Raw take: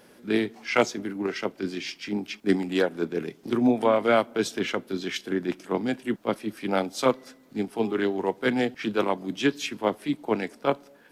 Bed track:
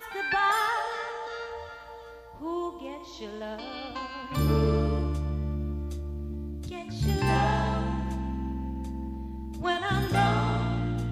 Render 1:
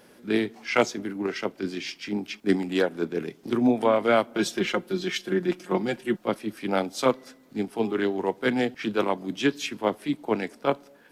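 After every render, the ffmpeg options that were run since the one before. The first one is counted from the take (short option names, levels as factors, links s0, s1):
-filter_complex "[0:a]asettb=1/sr,asplit=3[s0][s1][s2];[s0]atrim=end=4.334[s3];[s1]atrim=start=4.33:end=6.28,asetpts=PTS-STARTPTS,afade=t=in:d=0.004:c=qsin,afade=t=out:st=1.946:d=0.004:c=qsin,aecho=1:1:5.6:0.72,atrim=end_sample=85995[s4];[s2]atrim=start=6.276[s5];[s3][s4]acrossfade=d=0.004:c1=hsin:c2=qsin[s6];[s6][s5]acrossfade=d=0.004:c1=qsin:c2=hsin"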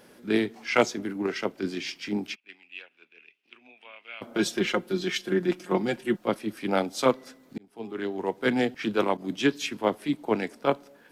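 -filter_complex "[0:a]asplit=3[s0][s1][s2];[s0]afade=t=out:st=2.34:d=0.02[s3];[s1]bandpass=f=2600:t=q:w=9.4,afade=t=in:st=2.34:d=0.02,afade=t=out:st=4.21:d=0.02[s4];[s2]afade=t=in:st=4.21:d=0.02[s5];[s3][s4][s5]amix=inputs=3:normalize=0,asettb=1/sr,asplit=3[s6][s7][s8];[s6]atrim=end=9.174[s9];[s7]atrim=start=9.17:end=9.78,asetpts=PTS-STARTPTS,afade=t=in:d=0.004:c=qsin,afade=t=out:st=0.606:d=0.004:c=qsin,agate=range=0.0224:threshold=0.0112:ratio=3:release=100:detection=peak[s10];[s8]atrim=start=9.776[s11];[s9][s10]acrossfade=d=0.004:c1=hsin:c2=qsin[s12];[s12][s11]acrossfade=d=0.004:c1=qsin:c2=hsin,asplit=2[s13][s14];[s13]atrim=end=7.58,asetpts=PTS-STARTPTS,afade=t=out:st=7.576:d=0.004:c=hsin[s15];[s14]atrim=start=7.58,asetpts=PTS-STARTPTS,afade=t=in:d=0.93[s16];[s15][s16]concat=n=2:v=0:a=1"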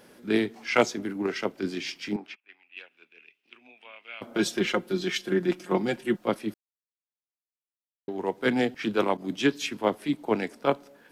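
-filter_complex "[0:a]asettb=1/sr,asplit=3[s0][s1][s2];[s0]atrim=end=2.164[s3];[s1]atrim=start=2.16:end=2.77,asetpts=PTS-STARTPTS,afade=t=in:d=0.004:c=qsin,afade=t=out:st=0.606:d=0.004:c=qsin,bandpass=f=1100:t=q:w=0.89[s4];[s2]atrim=start=2.766[s5];[s3][s4]acrossfade=d=0.004:c1=hsin:c2=qsin[s6];[s6][s5]acrossfade=d=0.004:c1=qsin:c2=hsin,asplit=3[s7][s8][s9];[s7]atrim=end=6.54,asetpts=PTS-STARTPTS,afade=t=out:st=6.536:d=0.004:c=hsin[s10];[s8]atrim=start=6.54:end=8.08,asetpts=PTS-STARTPTS,volume=0[s11];[s9]atrim=start=8.08,asetpts=PTS-STARTPTS,afade=t=in:d=0.004:c=hsin[s12];[s10][s11][s12]concat=n=3:v=0:a=1"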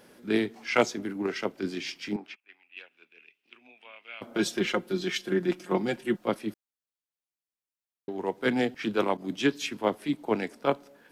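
-af "volume=0.841"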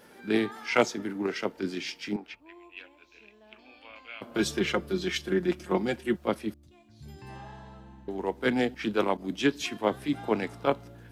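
-filter_complex "[1:a]volume=0.1[s0];[0:a][s0]amix=inputs=2:normalize=0"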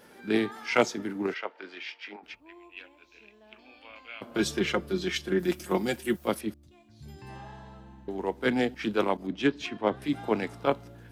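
-filter_complex "[0:a]asplit=3[s0][s1][s2];[s0]afade=t=out:st=1.33:d=0.02[s3];[s1]asuperpass=centerf=1400:order=4:qfactor=0.56,afade=t=in:st=1.33:d=0.02,afade=t=out:st=2.22:d=0.02[s4];[s2]afade=t=in:st=2.22:d=0.02[s5];[s3][s4][s5]amix=inputs=3:normalize=0,asettb=1/sr,asplit=3[s6][s7][s8];[s6]atrim=end=5.394[s9];[s7]atrim=start=5.39:end=6.41,asetpts=PTS-STARTPTS,afade=t=in:d=0.004:c=qsin,afade=t=out:st=1.016:d=0.004:c=qsin,aemphasis=mode=production:type=50fm[s10];[s8]atrim=start=6.406[s11];[s9][s10]acrossfade=d=0.004:c1=hsin:c2=qsin[s12];[s12][s11]acrossfade=d=0.004:c1=qsin:c2=hsin,asettb=1/sr,asplit=3[s13][s14][s15];[s13]atrim=end=9.274[s16];[s14]atrim=start=9.27:end=10.02,asetpts=PTS-STARTPTS,afade=t=in:d=0.004:c=qsin,afade=t=out:st=0.746:d=0.004:c=qsin,adynamicsmooth=sensitivity=1:basefreq=3800[s17];[s15]atrim=start=10.016[s18];[s16][s17]acrossfade=d=0.004:c1=hsin:c2=qsin[s19];[s19][s18]acrossfade=d=0.004:c1=qsin:c2=hsin"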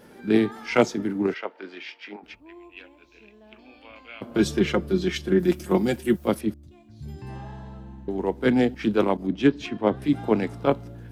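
-af "lowshelf=f=480:g=9.5"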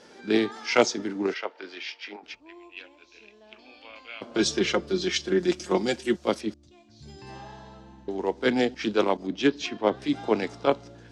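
-af "lowpass=f=6100:w=0.5412,lowpass=f=6100:w=1.3066,bass=f=250:g=-11,treble=f=4000:g=13"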